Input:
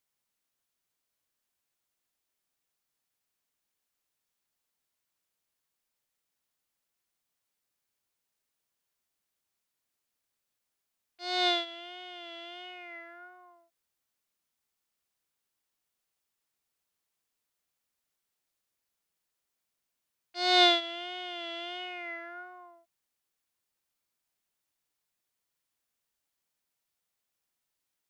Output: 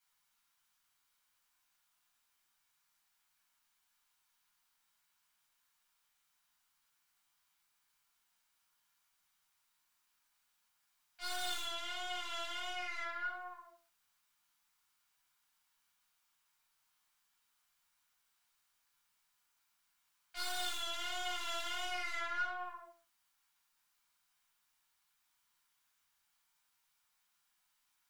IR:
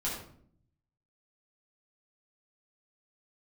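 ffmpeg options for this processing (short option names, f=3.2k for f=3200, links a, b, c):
-filter_complex "[0:a]acrossover=split=490|3600[a][b][c];[a]acompressor=threshold=-44dB:ratio=4[d];[b]acompressor=threshold=-39dB:ratio=4[e];[c]acompressor=threshold=-36dB:ratio=4[f];[d][e][f]amix=inputs=3:normalize=0,aeval=exprs='(tanh(200*val(0)+0.45)-tanh(0.45))/200':c=same,lowshelf=f=730:t=q:w=1.5:g=-10.5[g];[1:a]atrim=start_sample=2205,afade=t=out:st=0.31:d=0.01,atrim=end_sample=14112[h];[g][h]afir=irnorm=-1:irlink=0,volume=4dB"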